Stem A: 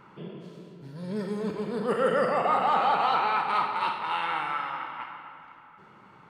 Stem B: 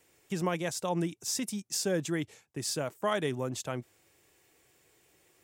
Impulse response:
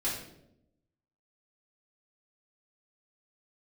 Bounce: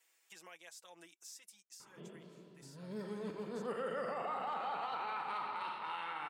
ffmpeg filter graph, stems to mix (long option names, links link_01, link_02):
-filter_complex "[0:a]equalizer=frequency=86:width=0.78:gain=-5.5,adelay=1800,volume=-10.5dB[link_01];[1:a]highpass=1000,aecho=1:1:6.1:0.96,acompressor=threshold=-46dB:ratio=3,volume=-9dB,afade=type=out:start_time=1.38:duration=0.66:silence=0.421697[link_02];[link_01][link_02]amix=inputs=2:normalize=0,alimiter=level_in=7dB:limit=-24dB:level=0:latency=1:release=67,volume=-7dB"